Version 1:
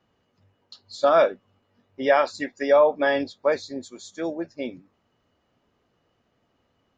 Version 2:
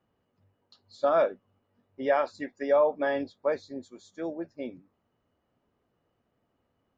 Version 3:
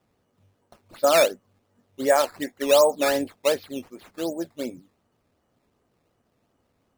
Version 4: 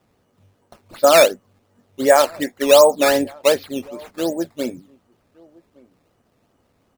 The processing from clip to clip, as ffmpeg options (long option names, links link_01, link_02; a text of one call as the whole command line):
ffmpeg -i in.wav -af "highshelf=frequency=2500:gain=-10.5,volume=-5dB" out.wav
ffmpeg -i in.wav -af "acrusher=samples=10:mix=1:aa=0.000001:lfo=1:lforange=10:lforate=2.7,volume=5.5dB" out.wav
ffmpeg -i in.wav -filter_complex "[0:a]asplit=2[link_01][link_02];[link_02]adelay=1166,volume=-26dB,highshelf=frequency=4000:gain=-26.2[link_03];[link_01][link_03]amix=inputs=2:normalize=0,volume=6.5dB" out.wav